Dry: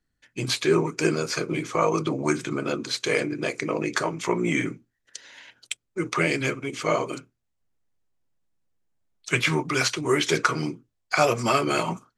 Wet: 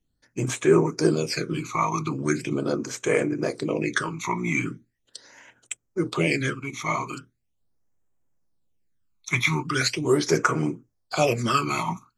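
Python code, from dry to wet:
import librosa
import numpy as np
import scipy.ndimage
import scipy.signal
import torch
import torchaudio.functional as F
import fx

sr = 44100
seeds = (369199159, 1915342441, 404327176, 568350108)

y = fx.phaser_stages(x, sr, stages=12, low_hz=490.0, high_hz=4400.0, hz=0.4, feedback_pct=25)
y = F.gain(torch.from_numpy(y), 2.0).numpy()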